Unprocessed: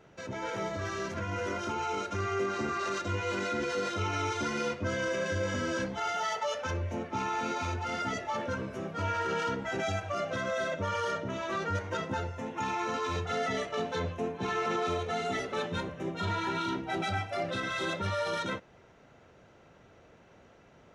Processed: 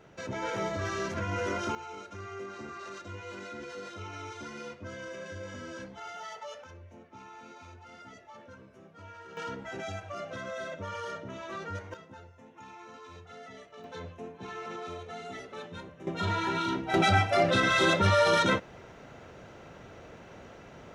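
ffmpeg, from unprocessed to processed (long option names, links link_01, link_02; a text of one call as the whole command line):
ffmpeg -i in.wav -af "asetnsamples=nb_out_samples=441:pad=0,asendcmd='1.75 volume volume -10dB;6.64 volume volume -16.5dB;9.37 volume volume -6dB;11.94 volume volume -16dB;13.84 volume volume -9dB;16.07 volume volume 2dB;16.94 volume volume 9dB',volume=2dB" out.wav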